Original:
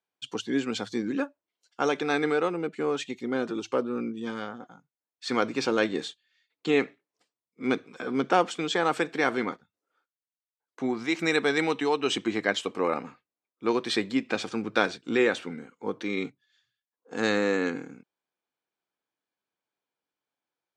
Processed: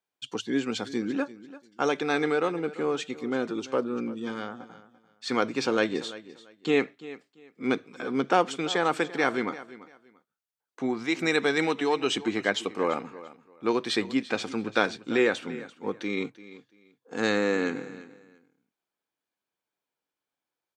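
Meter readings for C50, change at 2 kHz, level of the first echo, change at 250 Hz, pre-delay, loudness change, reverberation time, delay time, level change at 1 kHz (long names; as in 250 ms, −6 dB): no reverb audible, 0.0 dB, −17.0 dB, 0.0 dB, no reverb audible, 0.0 dB, no reverb audible, 341 ms, 0.0 dB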